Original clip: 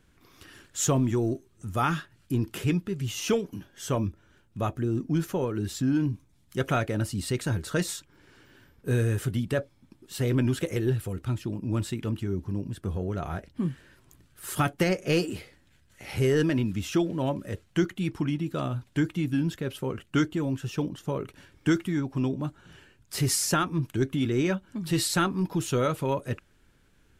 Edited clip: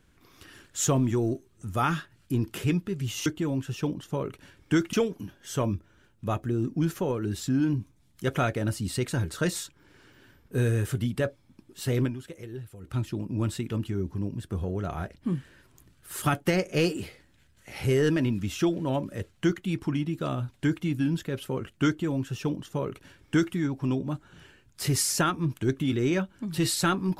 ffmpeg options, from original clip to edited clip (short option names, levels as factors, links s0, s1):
-filter_complex "[0:a]asplit=5[s0][s1][s2][s3][s4];[s0]atrim=end=3.262[s5];[s1]atrim=start=20.208:end=21.882[s6];[s2]atrim=start=3.258:end=10.5,asetpts=PTS-STARTPTS,afade=t=out:st=7.102:d=0.14:c=qua:silence=0.223872[s7];[s3]atrim=start=10.5:end=11.11,asetpts=PTS-STARTPTS,volume=0.224[s8];[s4]atrim=start=11.11,asetpts=PTS-STARTPTS,afade=t=in:d=0.14:c=qua:silence=0.223872[s9];[s5][s6]acrossfade=d=0.004:c1=hsin:c2=hsin[s10];[s7][s8][s9]concat=n=3:v=0:a=1[s11];[s10][s11]acrossfade=d=0.004:c1=hsin:c2=hsin"